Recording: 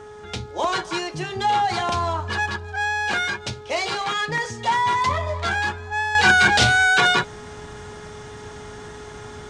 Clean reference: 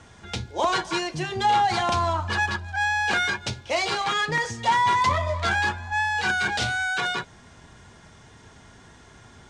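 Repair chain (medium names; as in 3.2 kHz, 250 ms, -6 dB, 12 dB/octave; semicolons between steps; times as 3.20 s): de-hum 421.4 Hz, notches 4; gain correction -9.5 dB, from 6.15 s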